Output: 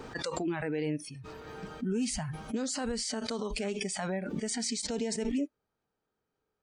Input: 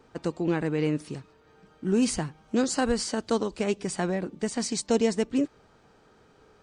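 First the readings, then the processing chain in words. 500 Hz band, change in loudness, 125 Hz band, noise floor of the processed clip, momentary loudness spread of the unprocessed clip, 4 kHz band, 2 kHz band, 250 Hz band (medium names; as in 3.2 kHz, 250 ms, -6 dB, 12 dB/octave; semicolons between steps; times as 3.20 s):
-7.5 dB, -6.0 dB, -6.0 dB, -85 dBFS, 8 LU, -1.5 dB, -4.0 dB, -6.5 dB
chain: spectral noise reduction 23 dB; peak limiter -21 dBFS, peak gain reduction 9.5 dB; swell ahead of each attack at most 21 dB/s; trim -3.5 dB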